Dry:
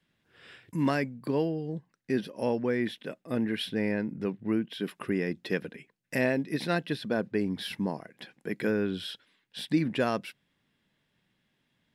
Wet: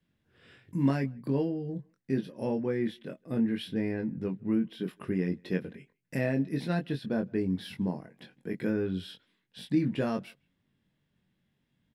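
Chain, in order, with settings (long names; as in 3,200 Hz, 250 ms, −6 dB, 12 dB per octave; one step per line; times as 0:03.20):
low-shelf EQ 340 Hz +12 dB
double-tracking delay 22 ms −5 dB
far-end echo of a speakerphone 160 ms, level −29 dB
level −8.5 dB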